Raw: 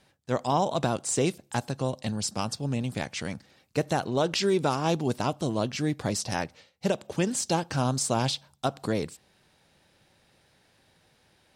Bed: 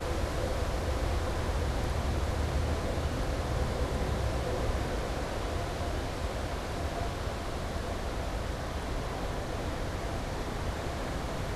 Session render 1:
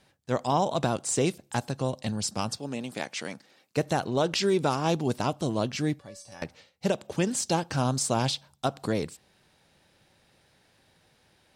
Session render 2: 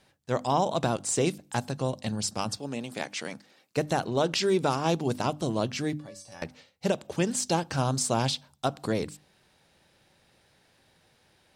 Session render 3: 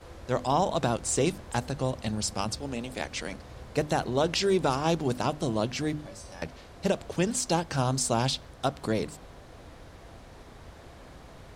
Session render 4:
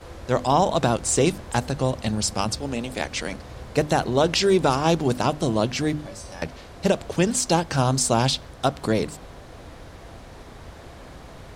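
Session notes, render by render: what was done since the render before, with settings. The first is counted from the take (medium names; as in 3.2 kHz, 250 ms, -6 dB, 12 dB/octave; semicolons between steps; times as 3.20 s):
2.58–3.77 s: high-pass 260 Hz; 5.99–6.42 s: feedback comb 570 Hz, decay 0.38 s, mix 90%
hum notches 50/100/150/200/250/300 Hz
add bed -14 dB
trim +6 dB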